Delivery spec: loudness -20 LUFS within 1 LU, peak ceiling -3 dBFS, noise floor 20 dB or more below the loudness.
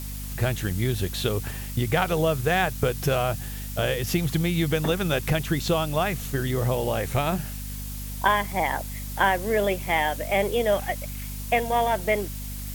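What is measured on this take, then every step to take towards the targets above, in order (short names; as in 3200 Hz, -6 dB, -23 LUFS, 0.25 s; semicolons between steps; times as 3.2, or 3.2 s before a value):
hum 50 Hz; harmonics up to 250 Hz; hum level -32 dBFS; noise floor -34 dBFS; noise floor target -46 dBFS; loudness -25.5 LUFS; peak -7.5 dBFS; loudness target -20.0 LUFS
-> notches 50/100/150/200/250 Hz; noise print and reduce 12 dB; gain +5.5 dB; limiter -3 dBFS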